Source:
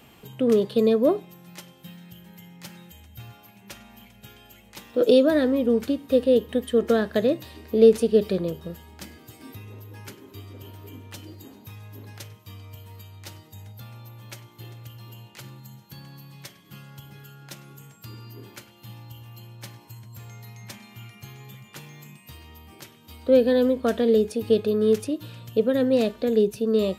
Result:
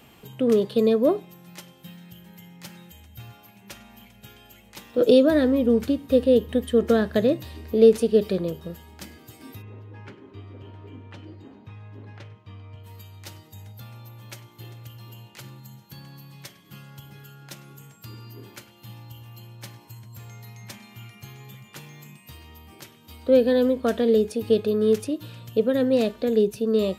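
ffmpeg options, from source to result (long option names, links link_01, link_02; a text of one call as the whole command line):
ffmpeg -i in.wav -filter_complex "[0:a]asettb=1/sr,asplit=3[link_01][link_02][link_03];[link_01]atrim=end=4.984[link_04];[link_02]atrim=start=4.98:end=7.73,asetpts=PTS-STARTPTS,afade=type=in:duration=0.004:curve=qsin,afade=type=out:start_time=2.746:duration=0.004:curve=qsin,lowshelf=frequency=120:gain=11[link_05];[link_03]atrim=start=7.726[link_06];[link_04][link_05]acrossfade=duration=0.004:curve1=hsin:curve2=qsin[link_07];[link_07][link_06]acrossfade=duration=0.004:curve1=qsin:curve2=hsin,asplit=3[link_08][link_09][link_10];[link_08]afade=type=out:start_time=9.61:duration=0.02[link_11];[link_09]lowpass=2400,afade=type=in:start_time=9.61:duration=0.02,afade=type=out:start_time=12.83:duration=0.02[link_12];[link_10]afade=type=in:start_time=12.83:duration=0.02[link_13];[link_11][link_12][link_13]amix=inputs=3:normalize=0" out.wav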